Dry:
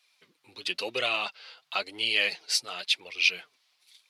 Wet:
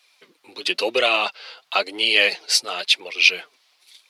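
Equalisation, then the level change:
high-pass filter 380 Hz 12 dB per octave
low-shelf EQ 490 Hz +11 dB
+8.0 dB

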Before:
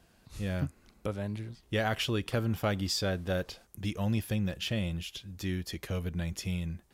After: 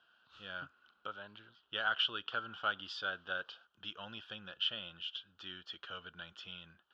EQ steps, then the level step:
pair of resonant band-passes 2,100 Hz, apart 1.1 octaves
high-frequency loss of the air 180 metres
+8.5 dB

